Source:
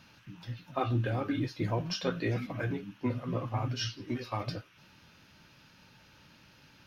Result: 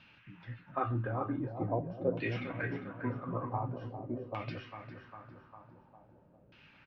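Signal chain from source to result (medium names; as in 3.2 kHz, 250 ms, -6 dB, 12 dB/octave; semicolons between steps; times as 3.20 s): feedback delay 402 ms, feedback 56%, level -9 dB; LFO low-pass saw down 0.46 Hz 510–2900 Hz; trim -5 dB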